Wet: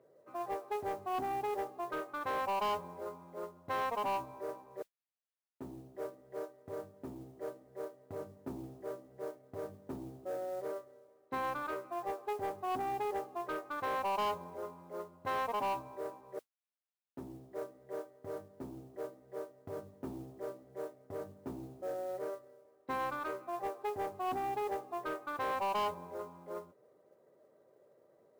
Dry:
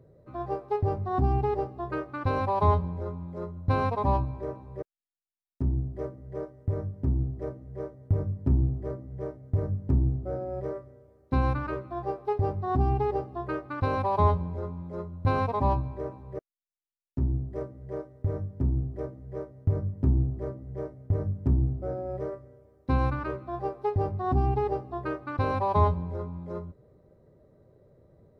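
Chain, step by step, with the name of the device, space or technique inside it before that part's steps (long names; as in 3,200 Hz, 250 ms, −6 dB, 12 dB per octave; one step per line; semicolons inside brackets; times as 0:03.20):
carbon microphone (band-pass filter 480–3,000 Hz; soft clipping −29.5 dBFS, distortion −10 dB; noise that follows the level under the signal 24 dB)
level −1 dB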